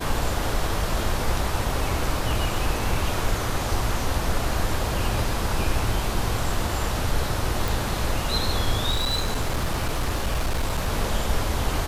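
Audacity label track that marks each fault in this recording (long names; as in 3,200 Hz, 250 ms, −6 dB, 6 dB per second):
7.680000	7.680000	click
8.900000	10.890000	clipping −19.5 dBFS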